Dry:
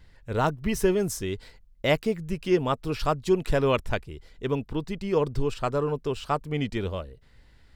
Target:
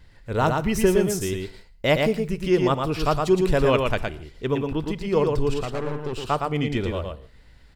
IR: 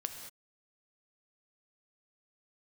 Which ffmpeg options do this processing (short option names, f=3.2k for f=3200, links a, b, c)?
-filter_complex "[0:a]asettb=1/sr,asplit=3[a][b][c];[a]atrim=end=5.634[d];[b]atrim=start=5.63:end=6.13,asetpts=PTS-STARTPTS,afade=t=in:d=0.004:c=qsin,afade=t=out:st=0.496:d=0.004:c=qsin,aeval=exprs='(tanh(25.1*val(0)+0.75)-tanh(0.75))/25.1':c=same[e];[c]atrim=start=6.126[f];[d][e]acrossfade=d=0.004:c1=hsin:c2=qsin[g];[g][f]acrossfade=d=0.004:c1=qsin:c2=hsin,aecho=1:1:114:0.631,asplit=2[h][i];[1:a]atrim=start_sample=2205,asetrate=61740,aresample=44100[j];[i][j]afir=irnorm=-1:irlink=0,volume=-5dB[k];[h][k]amix=inputs=2:normalize=0"